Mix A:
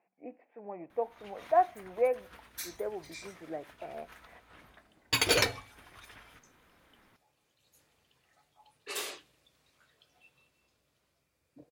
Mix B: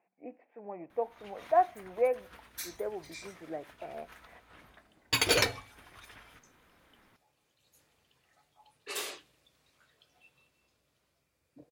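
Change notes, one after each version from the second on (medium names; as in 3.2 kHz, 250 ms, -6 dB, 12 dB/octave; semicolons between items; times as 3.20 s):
no change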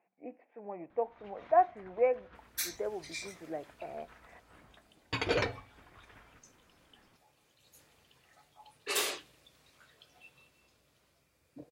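first sound +5.5 dB; second sound: add tape spacing loss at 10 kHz 27 dB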